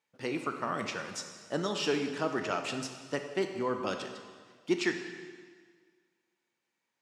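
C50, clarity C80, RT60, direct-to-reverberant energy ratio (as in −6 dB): 7.0 dB, 8.0 dB, 1.7 s, 5.0 dB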